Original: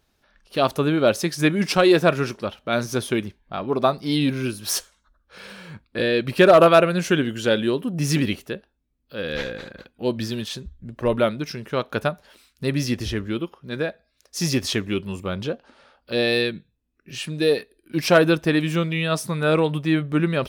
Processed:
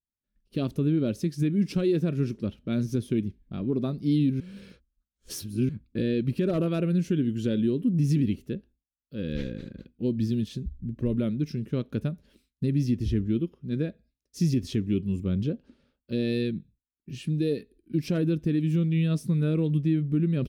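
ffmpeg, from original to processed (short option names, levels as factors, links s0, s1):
-filter_complex "[0:a]asplit=3[s0][s1][s2];[s0]atrim=end=4.402[s3];[s1]atrim=start=4.398:end=5.692,asetpts=PTS-STARTPTS,areverse[s4];[s2]atrim=start=5.688[s5];[s3][s4]acrossfade=d=0.004:c1=hsin:c2=hsin[s6];[s6][s5]acrossfade=d=0.004:c1=hsin:c2=hsin,agate=range=0.0224:threshold=0.00398:ratio=3:detection=peak,firequalizer=gain_entry='entry(240,0);entry(750,-26);entry(2400,-17)':delay=0.05:min_phase=1,alimiter=limit=0.0944:level=0:latency=1:release=237,volume=1.58"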